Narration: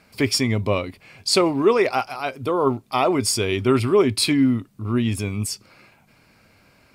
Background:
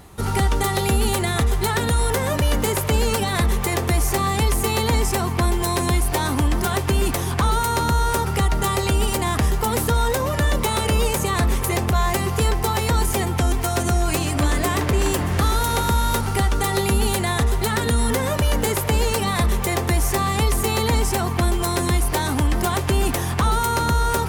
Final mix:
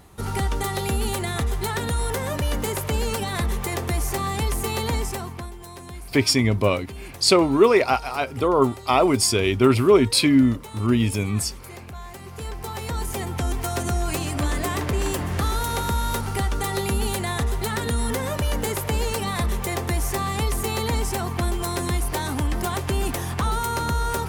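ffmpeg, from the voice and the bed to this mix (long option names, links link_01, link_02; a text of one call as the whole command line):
ffmpeg -i stem1.wav -i stem2.wav -filter_complex "[0:a]adelay=5950,volume=1.5dB[link_01];[1:a]volume=9dB,afade=type=out:start_time=4.92:duration=0.59:silence=0.211349,afade=type=in:start_time=12.18:duration=1.48:silence=0.199526[link_02];[link_01][link_02]amix=inputs=2:normalize=0" out.wav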